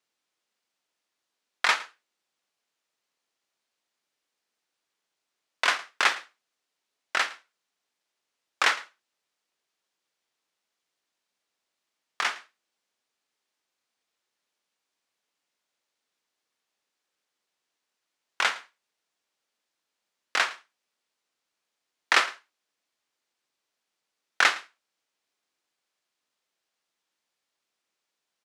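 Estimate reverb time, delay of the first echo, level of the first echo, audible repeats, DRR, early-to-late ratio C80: none, 0.111 s, -20.0 dB, 1, none, none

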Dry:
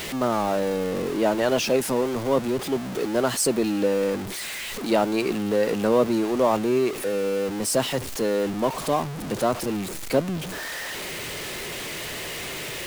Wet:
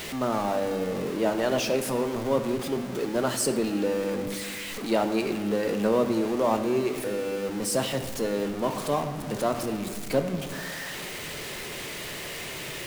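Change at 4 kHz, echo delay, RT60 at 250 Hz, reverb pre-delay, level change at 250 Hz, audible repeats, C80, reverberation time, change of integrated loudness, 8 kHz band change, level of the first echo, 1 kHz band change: -3.5 dB, none, 2.4 s, 5 ms, -2.5 dB, none, 10.5 dB, 1.9 s, -3.0 dB, -3.5 dB, none, -3.0 dB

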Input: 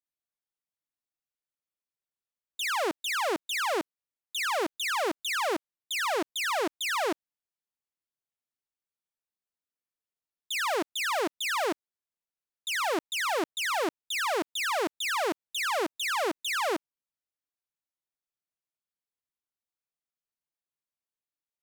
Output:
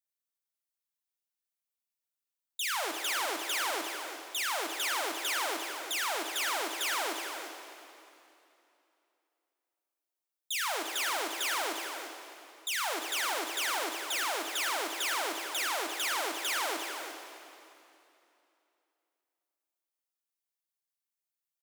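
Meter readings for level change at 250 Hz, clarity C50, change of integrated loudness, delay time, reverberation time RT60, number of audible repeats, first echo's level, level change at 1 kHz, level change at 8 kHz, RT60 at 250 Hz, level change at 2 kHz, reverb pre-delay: -9.0 dB, 3.5 dB, -2.5 dB, 0.348 s, 2.8 s, 1, -9.5 dB, -3.5 dB, +2.5 dB, 3.0 s, -2.5 dB, 5 ms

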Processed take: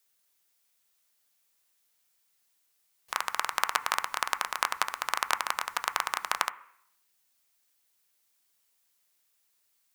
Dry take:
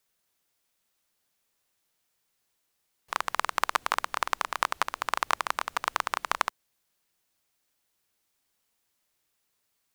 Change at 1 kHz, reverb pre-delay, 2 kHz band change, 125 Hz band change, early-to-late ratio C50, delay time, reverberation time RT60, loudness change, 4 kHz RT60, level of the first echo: -2.0 dB, 3 ms, -0.5 dB, n/a, 17.5 dB, none, 0.70 s, -0.5 dB, 0.80 s, none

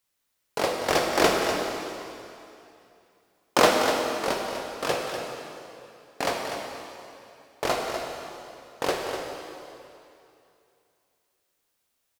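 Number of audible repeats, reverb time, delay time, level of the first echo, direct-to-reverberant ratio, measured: 1, 2.7 s, 0.246 s, -9.0 dB, -0.5 dB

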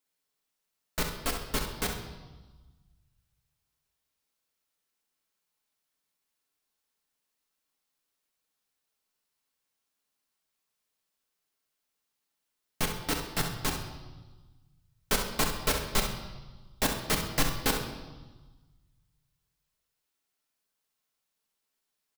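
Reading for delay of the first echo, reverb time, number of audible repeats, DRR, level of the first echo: 66 ms, 1.3 s, 1, 1.5 dB, -8.5 dB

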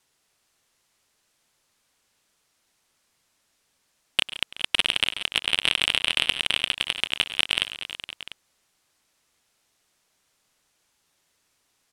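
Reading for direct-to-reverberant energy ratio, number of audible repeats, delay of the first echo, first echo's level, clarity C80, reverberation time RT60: none, 5, 99 ms, -18.0 dB, none, none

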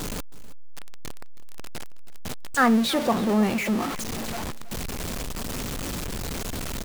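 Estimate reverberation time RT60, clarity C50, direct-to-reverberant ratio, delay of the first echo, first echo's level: none, none, none, 0.321 s, -18.0 dB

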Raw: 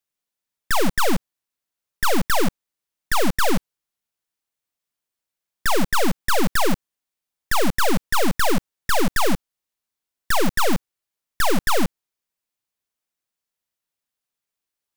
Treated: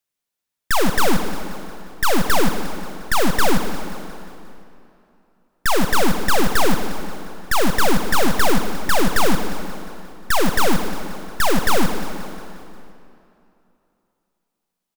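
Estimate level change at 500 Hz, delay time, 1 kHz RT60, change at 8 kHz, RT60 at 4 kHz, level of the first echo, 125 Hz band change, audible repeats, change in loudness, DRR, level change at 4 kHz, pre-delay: +3.0 dB, 0.177 s, 2.7 s, +2.5 dB, 2.1 s, -13.0 dB, +3.0 dB, 5, +2.0 dB, 7.0 dB, +3.0 dB, 39 ms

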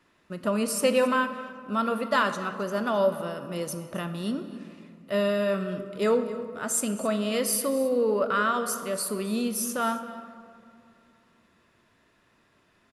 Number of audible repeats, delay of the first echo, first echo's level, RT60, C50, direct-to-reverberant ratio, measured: 1, 0.265 s, -18.0 dB, 2.6 s, 9.5 dB, 8.0 dB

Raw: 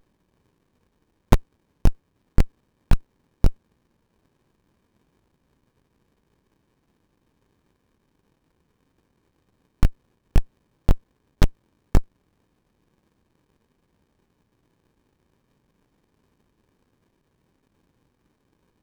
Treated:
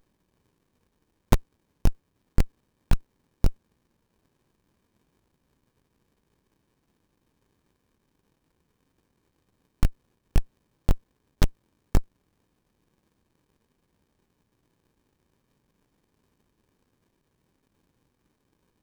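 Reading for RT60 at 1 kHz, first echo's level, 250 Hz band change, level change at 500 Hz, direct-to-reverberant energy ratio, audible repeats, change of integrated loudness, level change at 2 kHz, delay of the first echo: none, none, -4.0 dB, -4.0 dB, none, none, -4.0 dB, -3.0 dB, none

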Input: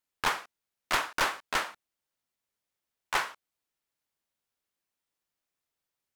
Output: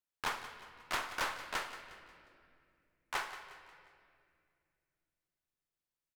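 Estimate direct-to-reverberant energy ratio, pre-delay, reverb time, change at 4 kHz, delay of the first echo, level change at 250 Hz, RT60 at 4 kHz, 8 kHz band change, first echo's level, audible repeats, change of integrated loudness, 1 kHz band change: 8.0 dB, 23 ms, 2.3 s, -8.0 dB, 0.179 s, -8.0 dB, 1.7 s, -8.0 dB, -14.0 dB, 4, -8.5 dB, -8.0 dB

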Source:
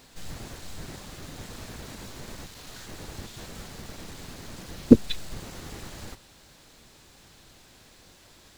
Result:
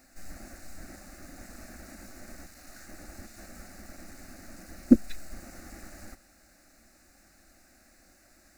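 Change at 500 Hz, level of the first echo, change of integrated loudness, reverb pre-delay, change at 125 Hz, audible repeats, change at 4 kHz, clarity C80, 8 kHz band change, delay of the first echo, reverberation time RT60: -10.0 dB, none, +5.0 dB, none, -10.0 dB, none, -13.0 dB, none, -4.5 dB, none, none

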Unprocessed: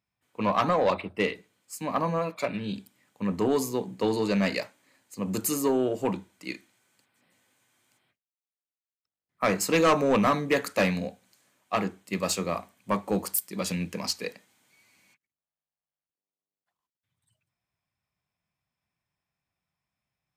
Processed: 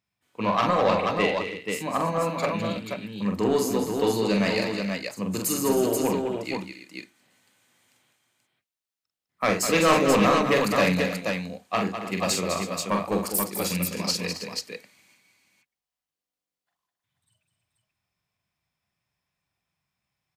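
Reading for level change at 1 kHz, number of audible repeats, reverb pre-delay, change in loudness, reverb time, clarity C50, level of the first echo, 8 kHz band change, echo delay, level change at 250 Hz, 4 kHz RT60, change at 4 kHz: +3.5 dB, 5, none, +3.0 dB, none, none, -4.5 dB, +4.5 dB, 44 ms, +3.0 dB, none, +5.5 dB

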